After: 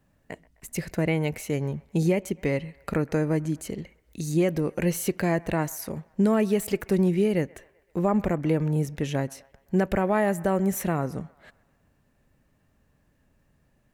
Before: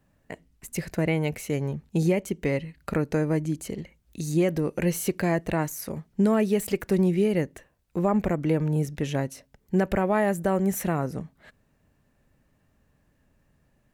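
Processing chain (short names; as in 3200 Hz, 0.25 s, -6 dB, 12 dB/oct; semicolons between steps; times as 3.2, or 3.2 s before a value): band-limited delay 0.129 s, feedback 55%, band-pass 1200 Hz, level -21.5 dB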